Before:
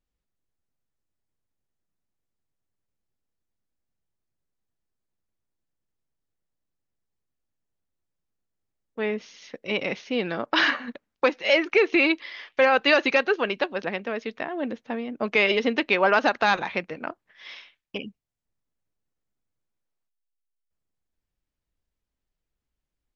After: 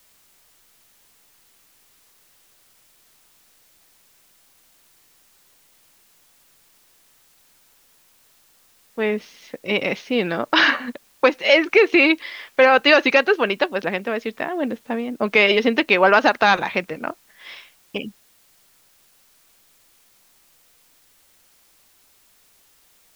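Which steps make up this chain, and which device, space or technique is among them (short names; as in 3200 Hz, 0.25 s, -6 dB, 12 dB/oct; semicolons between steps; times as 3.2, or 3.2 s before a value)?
plain cassette with noise reduction switched in (mismatched tape noise reduction decoder only; wow and flutter 25 cents; white noise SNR 34 dB); gain +5.5 dB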